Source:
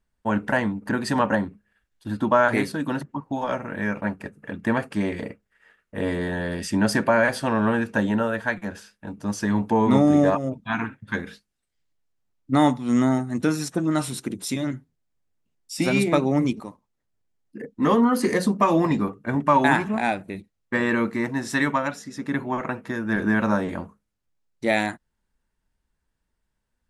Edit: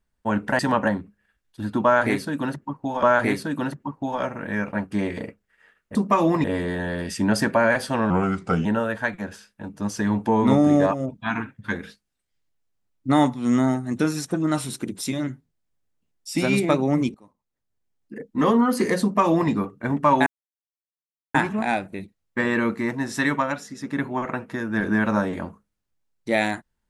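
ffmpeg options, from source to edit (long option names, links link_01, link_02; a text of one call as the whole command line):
ffmpeg -i in.wav -filter_complex "[0:a]asplit=10[link_01][link_02][link_03][link_04][link_05][link_06][link_07][link_08][link_09][link_10];[link_01]atrim=end=0.592[link_11];[link_02]atrim=start=1.058:end=3.502[link_12];[link_03]atrim=start=2.318:end=4.212[link_13];[link_04]atrim=start=4.938:end=5.972[link_14];[link_05]atrim=start=18.448:end=18.942[link_15];[link_06]atrim=start=5.968:end=7.634[link_16];[link_07]atrim=start=7.63:end=8.09,asetpts=PTS-STARTPTS,asetrate=36603,aresample=44100[link_17];[link_08]atrim=start=8.086:end=16.58,asetpts=PTS-STARTPTS,afade=type=out:start_time=8.49:duration=0.004:curve=hsin:silence=0.0794328[link_18];[link_09]atrim=start=16.58:end=19.7,asetpts=PTS-STARTPTS,afade=type=in:duration=1.14:curve=qsin:silence=0.0794328,afade=type=out:start_time=3.116:duration=0.004:curve=hsin,apad=pad_dur=1.08[link_19];[link_10]atrim=start=19.7,asetpts=PTS-STARTPTS,afade=type=in:duration=0.004:curve=hsin[link_20];[link_11][link_12]acrossfade=duration=0.004:curve1=hsin:curve2=hsin[link_21];[link_21][link_13]acrossfade=duration=0.004:curve1=hsin:curve2=hsin[link_22];[link_22][link_14]acrossfade=duration=0.004:curve1=hsin:curve2=hsin[link_23];[link_23][link_15]acrossfade=duration=0.004:curve1=hsin:curve2=hsin[link_24];[link_24][link_16]acrossfade=duration=0.004:curve1=hsin:curve2=hsin[link_25];[link_25][link_17]acrossfade=duration=0.004:curve1=hsin:curve2=hsin[link_26];[link_18][link_19][link_20]concat=n=3:v=0:a=1[link_27];[link_26][link_27]acrossfade=duration=0.004:curve1=hsin:curve2=hsin" out.wav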